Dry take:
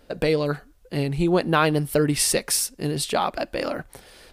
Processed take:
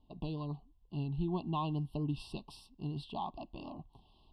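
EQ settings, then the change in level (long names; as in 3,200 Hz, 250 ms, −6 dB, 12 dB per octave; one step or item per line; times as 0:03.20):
Chebyshev band-stop filter 1,100–2,700 Hz, order 5
head-to-tape spacing loss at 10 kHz 27 dB
phaser with its sweep stopped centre 1,900 Hz, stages 6
−8.5 dB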